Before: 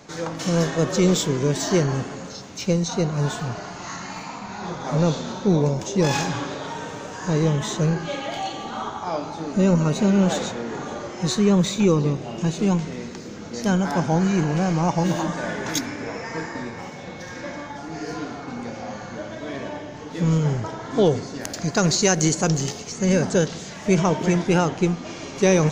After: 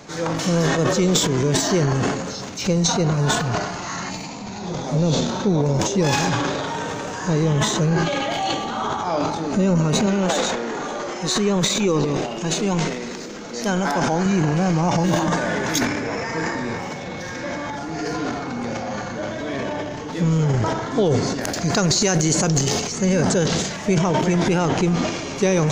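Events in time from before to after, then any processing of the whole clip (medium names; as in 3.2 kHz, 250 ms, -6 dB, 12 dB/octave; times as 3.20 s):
4.09–5.29 s: peaking EQ 1.3 kHz -14 dB -> -7.5 dB 1.5 oct
10.06–14.26 s: peaking EQ 95 Hz -14.5 dB 1.8 oct
whole clip: transient shaper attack -2 dB, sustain +11 dB; compression 4:1, threshold -20 dBFS; trim +4.5 dB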